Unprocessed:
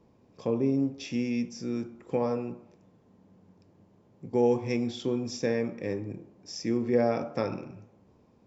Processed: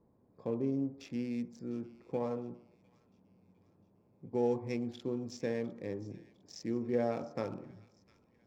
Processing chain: Wiener smoothing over 15 samples; on a send: thin delay 0.704 s, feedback 45%, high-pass 2100 Hz, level -17.5 dB; on the sum: gain -7 dB

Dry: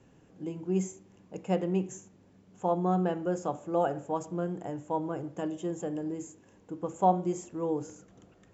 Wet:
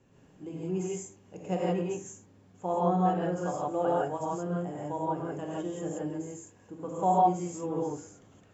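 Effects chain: non-linear reverb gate 0.19 s rising, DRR -5.5 dB; gain -5 dB

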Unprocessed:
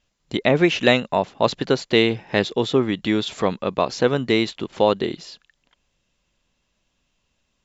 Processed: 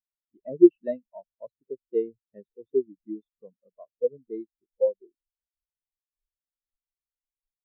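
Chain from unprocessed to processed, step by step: added noise pink -34 dBFS; spectral expander 4:1; gain -2.5 dB

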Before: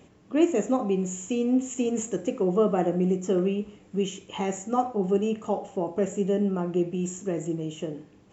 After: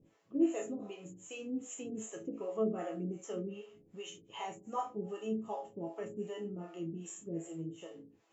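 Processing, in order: resonator bank A2 major, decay 0.34 s; harmonic tremolo 2.6 Hz, depth 100%, crossover 460 Hz; gain +7 dB

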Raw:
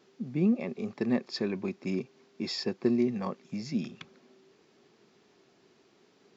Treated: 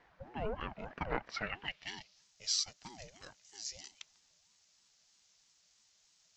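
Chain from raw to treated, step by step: band-pass sweep 1200 Hz -> 6700 Hz, 1.23–2.28; ring modulator with a swept carrier 410 Hz, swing 50%, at 3.1 Hz; gain +11.5 dB

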